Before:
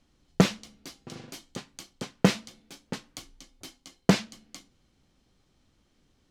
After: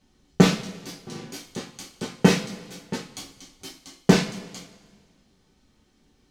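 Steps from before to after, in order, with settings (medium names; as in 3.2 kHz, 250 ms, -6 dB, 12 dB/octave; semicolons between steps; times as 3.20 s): two-slope reverb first 0.31 s, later 1.6 s, from -18 dB, DRR -4.5 dB; trim -1 dB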